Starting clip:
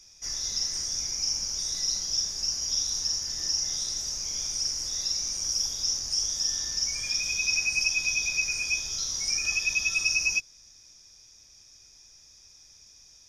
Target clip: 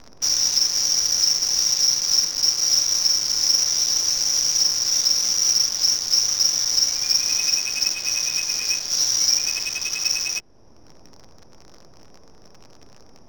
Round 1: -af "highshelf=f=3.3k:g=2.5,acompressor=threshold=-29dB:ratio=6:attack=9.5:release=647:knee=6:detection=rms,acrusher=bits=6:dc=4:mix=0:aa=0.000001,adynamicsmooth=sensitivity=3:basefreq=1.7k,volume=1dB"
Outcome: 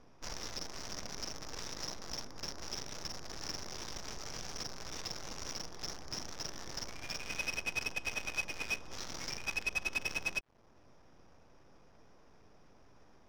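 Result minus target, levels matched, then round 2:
4000 Hz band -3.0 dB
-af "highshelf=f=3.3k:g=2.5,acompressor=threshold=-29dB:ratio=6:attack=9.5:release=647:knee=6:detection=rms,lowpass=f=5.6k:t=q:w=6.6,acrusher=bits=6:dc=4:mix=0:aa=0.000001,adynamicsmooth=sensitivity=3:basefreq=1.7k,volume=1dB"

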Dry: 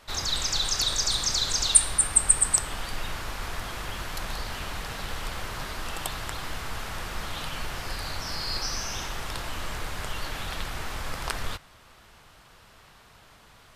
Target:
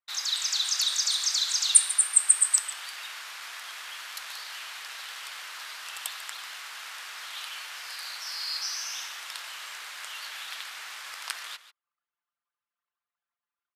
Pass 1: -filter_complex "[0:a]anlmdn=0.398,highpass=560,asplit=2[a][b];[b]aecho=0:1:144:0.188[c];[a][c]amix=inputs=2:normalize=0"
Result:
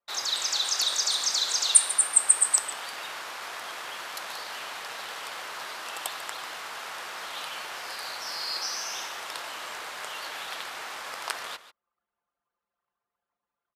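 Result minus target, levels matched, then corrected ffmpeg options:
500 Hz band +15.5 dB
-filter_complex "[0:a]anlmdn=0.398,highpass=1.6k,asplit=2[a][b];[b]aecho=0:1:144:0.188[c];[a][c]amix=inputs=2:normalize=0"

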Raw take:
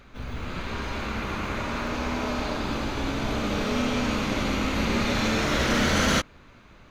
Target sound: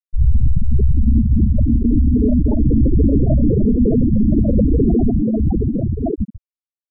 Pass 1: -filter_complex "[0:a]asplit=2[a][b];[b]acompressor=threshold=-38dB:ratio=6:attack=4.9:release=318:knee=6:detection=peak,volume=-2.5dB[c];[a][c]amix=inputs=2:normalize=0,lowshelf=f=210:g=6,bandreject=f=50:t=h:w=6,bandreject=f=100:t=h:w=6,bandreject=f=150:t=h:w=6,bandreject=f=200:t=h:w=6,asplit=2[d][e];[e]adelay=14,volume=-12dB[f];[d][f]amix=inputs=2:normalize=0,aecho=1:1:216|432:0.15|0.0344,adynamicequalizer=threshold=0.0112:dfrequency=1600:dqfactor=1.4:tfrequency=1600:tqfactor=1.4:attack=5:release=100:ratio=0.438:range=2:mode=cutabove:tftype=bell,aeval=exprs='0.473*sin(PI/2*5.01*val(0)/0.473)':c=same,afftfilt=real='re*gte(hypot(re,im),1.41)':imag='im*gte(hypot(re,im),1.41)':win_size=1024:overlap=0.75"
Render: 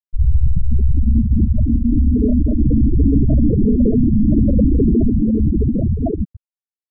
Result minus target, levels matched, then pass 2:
compressor: peak gain reduction +7.5 dB
-filter_complex "[0:a]asplit=2[a][b];[b]acompressor=threshold=-29dB:ratio=6:attack=4.9:release=318:knee=6:detection=peak,volume=-2.5dB[c];[a][c]amix=inputs=2:normalize=0,lowshelf=f=210:g=6,bandreject=f=50:t=h:w=6,bandreject=f=100:t=h:w=6,bandreject=f=150:t=h:w=6,bandreject=f=200:t=h:w=6,asplit=2[d][e];[e]adelay=14,volume=-12dB[f];[d][f]amix=inputs=2:normalize=0,aecho=1:1:216|432:0.15|0.0344,adynamicequalizer=threshold=0.0112:dfrequency=1600:dqfactor=1.4:tfrequency=1600:tqfactor=1.4:attack=5:release=100:ratio=0.438:range=2:mode=cutabove:tftype=bell,aeval=exprs='0.473*sin(PI/2*5.01*val(0)/0.473)':c=same,afftfilt=real='re*gte(hypot(re,im),1.41)':imag='im*gte(hypot(re,im),1.41)':win_size=1024:overlap=0.75"

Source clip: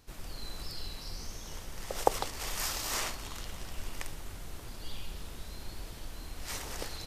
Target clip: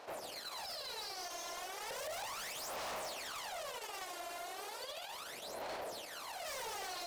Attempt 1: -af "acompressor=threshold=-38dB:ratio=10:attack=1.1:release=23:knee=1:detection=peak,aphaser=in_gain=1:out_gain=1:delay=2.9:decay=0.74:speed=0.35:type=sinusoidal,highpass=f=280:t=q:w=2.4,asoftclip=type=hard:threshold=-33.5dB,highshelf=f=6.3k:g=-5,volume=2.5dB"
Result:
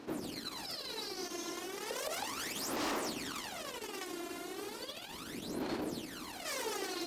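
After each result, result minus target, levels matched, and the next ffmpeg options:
250 Hz band +14.5 dB; hard clip: distortion -11 dB
-af "acompressor=threshold=-38dB:ratio=10:attack=1.1:release=23:knee=1:detection=peak,aphaser=in_gain=1:out_gain=1:delay=2.9:decay=0.74:speed=0.35:type=sinusoidal,highpass=f=620:t=q:w=2.4,asoftclip=type=hard:threshold=-33.5dB,highshelf=f=6.3k:g=-5,volume=2.5dB"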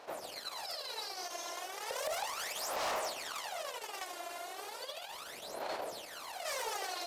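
hard clip: distortion -8 dB
-af "acompressor=threshold=-38dB:ratio=10:attack=1.1:release=23:knee=1:detection=peak,aphaser=in_gain=1:out_gain=1:delay=2.9:decay=0.74:speed=0.35:type=sinusoidal,highpass=f=620:t=q:w=2.4,asoftclip=type=hard:threshold=-42.5dB,highshelf=f=6.3k:g=-5,volume=2.5dB"

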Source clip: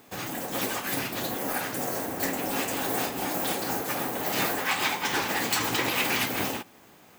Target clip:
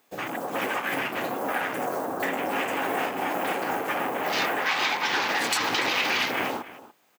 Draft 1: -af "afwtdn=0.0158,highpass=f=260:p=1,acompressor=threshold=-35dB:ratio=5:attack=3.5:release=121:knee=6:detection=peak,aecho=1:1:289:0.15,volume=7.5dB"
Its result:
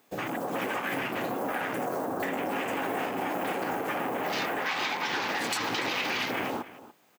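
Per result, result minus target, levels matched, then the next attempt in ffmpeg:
compressor: peak gain reduction +6 dB; 250 Hz band +3.5 dB
-af "afwtdn=0.0158,highpass=f=260:p=1,acompressor=threshold=-28dB:ratio=5:attack=3.5:release=121:knee=6:detection=peak,aecho=1:1:289:0.15,volume=7.5dB"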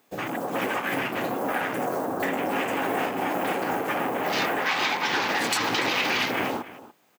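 250 Hz band +3.0 dB
-af "afwtdn=0.0158,highpass=f=550:p=1,acompressor=threshold=-28dB:ratio=5:attack=3.5:release=121:knee=6:detection=peak,aecho=1:1:289:0.15,volume=7.5dB"

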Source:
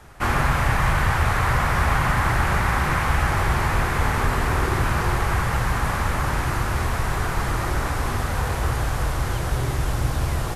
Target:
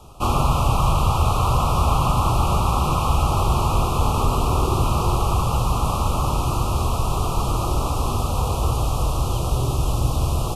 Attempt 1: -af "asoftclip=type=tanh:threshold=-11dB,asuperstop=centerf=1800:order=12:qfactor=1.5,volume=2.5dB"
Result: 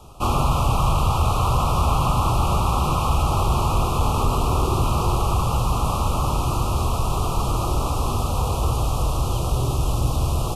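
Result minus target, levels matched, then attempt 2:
soft clip: distortion +15 dB
-af "asoftclip=type=tanh:threshold=-2.5dB,asuperstop=centerf=1800:order=12:qfactor=1.5,volume=2.5dB"

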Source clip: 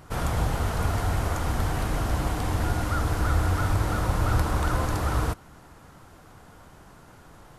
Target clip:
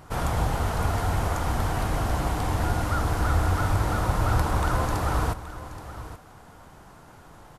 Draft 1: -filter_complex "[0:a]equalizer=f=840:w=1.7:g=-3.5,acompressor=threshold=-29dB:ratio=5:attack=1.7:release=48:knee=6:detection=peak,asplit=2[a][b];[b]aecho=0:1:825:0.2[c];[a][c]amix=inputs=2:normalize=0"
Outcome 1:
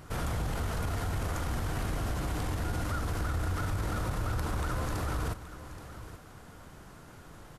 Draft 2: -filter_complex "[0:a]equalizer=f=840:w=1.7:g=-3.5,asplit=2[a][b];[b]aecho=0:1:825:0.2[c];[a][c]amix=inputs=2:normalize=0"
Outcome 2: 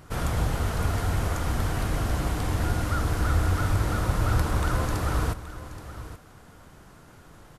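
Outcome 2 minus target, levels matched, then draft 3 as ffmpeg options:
1000 Hz band -3.5 dB
-filter_complex "[0:a]equalizer=f=840:w=1.7:g=3.5,asplit=2[a][b];[b]aecho=0:1:825:0.2[c];[a][c]amix=inputs=2:normalize=0"

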